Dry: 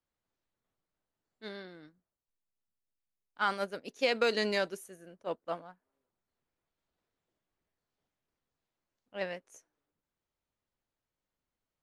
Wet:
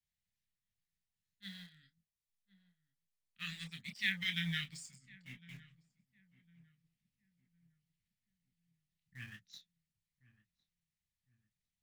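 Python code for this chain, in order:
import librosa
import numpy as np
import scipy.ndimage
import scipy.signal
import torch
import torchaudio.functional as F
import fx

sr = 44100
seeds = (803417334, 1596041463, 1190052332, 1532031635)

p1 = fx.pitch_glide(x, sr, semitones=-10.5, runs='starting unshifted')
p2 = scipy.signal.sosfilt(scipy.signal.cheby1(4, 1.0, [200.0, 1800.0], 'bandstop', fs=sr, output='sos'), p1)
p3 = fx.env_lowpass_down(p2, sr, base_hz=1700.0, full_db=-29.5)
p4 = fx.hpss(p3, sr, part='harmonic', gain_db=-6)
p5 = fx.quant_companded(p4, sr, bits=4)
p6 = p4 + F.gain(torch.from_numpy(p5), -11.0).numpy()
p7 = fx.chorus_voices(p6, sr, voices=4, hz=0.94, base_ms=27, depth_ms=4.1, mix_pct=30)
p8 = p7 + fx.echo_filtered(p7, sr, ms=1056, feedback_pct=41, hz=990.0, wet_db=-18, dry=0)
y = F.gain(torch.from_numpy(p8), 4.0).numpy()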